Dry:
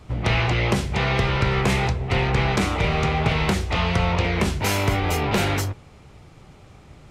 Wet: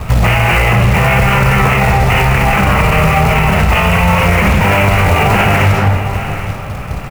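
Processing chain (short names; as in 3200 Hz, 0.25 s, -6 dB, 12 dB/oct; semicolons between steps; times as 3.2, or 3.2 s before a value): elliptic low-pass 2800 Hz, stop band 40 dB; bell 330 Hz -11 dB 0.65 oct; compressor 16:1, threshold -25 dBFS, peak gain reduction 9.5 dB; harmonic tremolo 4.9 Hz, depth 50%, crossover 1200 Hz; short-mantissa float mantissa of 2-bit; echo 0.811 s -18.5 dB; reverb RT60 1.4 s, pre-delay 10 ms, DRR 1.5 dB; maximiser +27.5 dB; gain -1 dB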